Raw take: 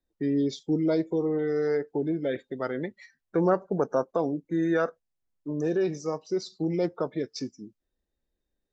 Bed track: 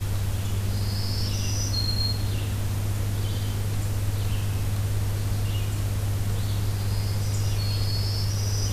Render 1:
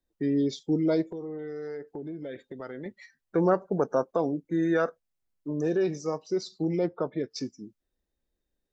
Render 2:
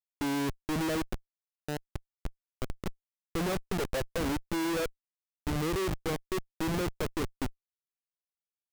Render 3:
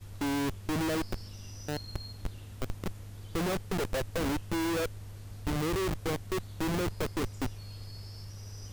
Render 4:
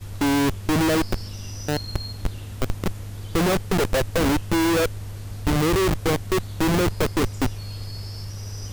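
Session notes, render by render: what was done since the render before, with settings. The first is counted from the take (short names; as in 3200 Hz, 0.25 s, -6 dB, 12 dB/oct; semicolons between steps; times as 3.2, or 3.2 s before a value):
1.02–2.86 compressor 3:1, threshold -37 dBFS; 6.79–7.31 air absorption 190 m
median filter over 9 samples; Schmitt trigger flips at -31 dBFS
add bed track -18.5 dB
gain +10.5 dB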